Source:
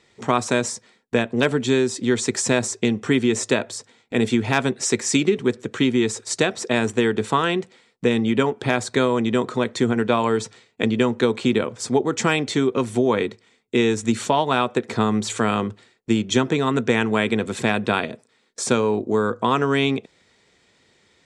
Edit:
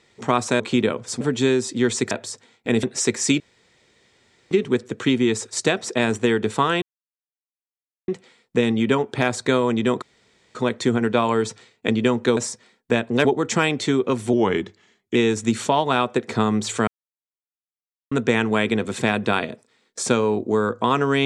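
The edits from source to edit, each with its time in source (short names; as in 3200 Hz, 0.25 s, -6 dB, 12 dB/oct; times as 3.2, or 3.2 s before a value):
0.6–1.48 swap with 11.32–11.93
2.38–3.57 cut
4.29–4.68 cut
5.25 insert room tone 1.11 s
7.56 insert silence 1.26 s
9.5 insert room tone 0.53 s
13.01–13.76 speed 91%
15.48–16.72 mute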